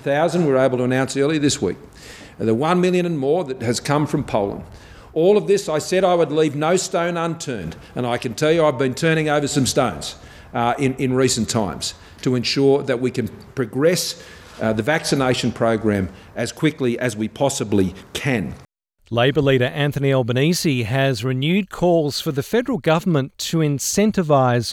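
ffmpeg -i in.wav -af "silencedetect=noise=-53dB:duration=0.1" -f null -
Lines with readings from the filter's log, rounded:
silence_start: 18.65
silence_end: 19.02 | silence_duration: 0.37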